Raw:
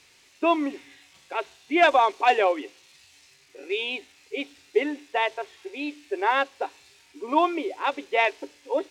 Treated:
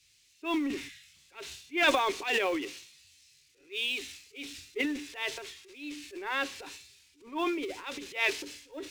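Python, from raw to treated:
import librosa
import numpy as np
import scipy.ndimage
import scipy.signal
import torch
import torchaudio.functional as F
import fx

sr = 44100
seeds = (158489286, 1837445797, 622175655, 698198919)

y = fx.law_mismatch(x, sr, coded='mu')
y = fx.peak_eq(y, sr, hz=720.0, db=-14.0, octaves=1.6)
y = fx.transient(y, sr, attack_db=-7, sustain_db=9)
y = fx.spec_erase(y, sr, start_s=0.89, length_s=0.26, low_hz=220.0, high_hz=1200.0)
y = fx.band_widen(y, sr, depth_pct=70)
y = F.gain(torch.from_numpy(y), -2.5).numpy()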